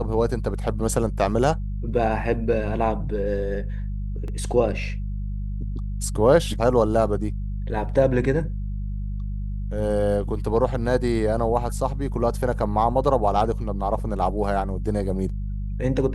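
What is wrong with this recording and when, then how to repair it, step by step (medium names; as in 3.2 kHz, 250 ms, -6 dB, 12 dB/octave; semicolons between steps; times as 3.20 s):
hum 50 Hz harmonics 4 -28 dBFS
4.28 s: dropout 2.1 ms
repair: de-hum 50 Hz, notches 4; interpolate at 4.28 s, 2.1 ms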